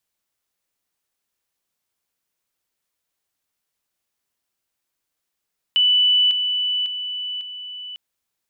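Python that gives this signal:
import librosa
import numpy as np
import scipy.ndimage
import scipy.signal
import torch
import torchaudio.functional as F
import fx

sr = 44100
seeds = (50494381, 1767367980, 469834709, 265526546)

y = fx.level_ladder(sr, hz=2980.0, from_db=-13.0, step_db=-6.0, steps=4, dwell_s=0.55, gap_s=0.0)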